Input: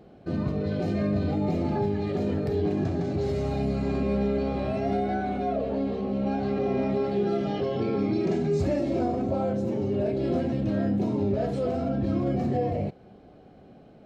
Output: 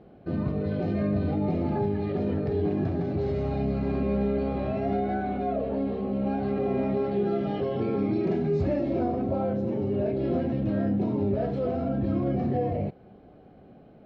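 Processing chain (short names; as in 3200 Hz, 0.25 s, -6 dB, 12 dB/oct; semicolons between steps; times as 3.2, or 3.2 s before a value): air absorption 230 m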